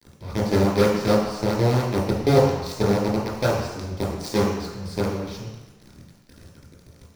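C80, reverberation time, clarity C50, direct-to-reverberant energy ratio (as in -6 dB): 5.0 dB, 1.1 s, 2.0 dB, -5.5 dB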